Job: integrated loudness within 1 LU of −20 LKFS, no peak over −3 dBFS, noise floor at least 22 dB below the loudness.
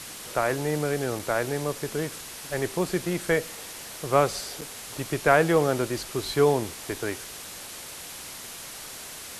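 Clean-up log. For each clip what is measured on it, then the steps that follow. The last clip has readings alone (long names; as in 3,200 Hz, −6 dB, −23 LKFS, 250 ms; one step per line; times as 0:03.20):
number of dropouts 2; longest dropout 4.5 ms; background noise floor −40 dBFS; target noise floor −50 dBFS; integrated loudness −27.5 LKFS; sample peak −4.0 dBFS; target loudness −20.0 LKFS
→ repair the gap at 0:01.19/0:04.61, 4.5 ms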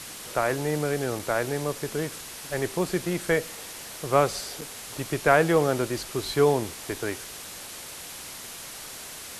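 number of dropouts 0; background noise floor −40 dBFS; target noise floor −50 dBFS
→ broadband denoise 10 dB, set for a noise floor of −40 dBFS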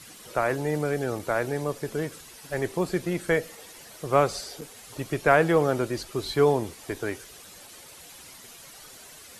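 background noise floor −48 dBFS; target noise floor −49 dBFS
→ broadband denoise 6 dB, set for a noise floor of −48 dBFS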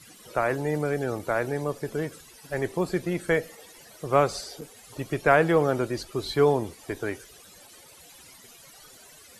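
background noise floor −51 dBFS; integrated loudness −26.5 LKFS; sample peak −4.5 dBFS; target loudness −20.0 LKFS
→ level +6.5 dB
brickwall limiter −3 dBFS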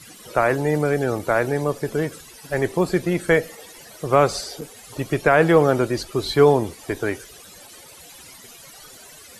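integrated loudness −20.5 LKFS; sample peak −3.0 dBFS; background noise floor −45 dBFS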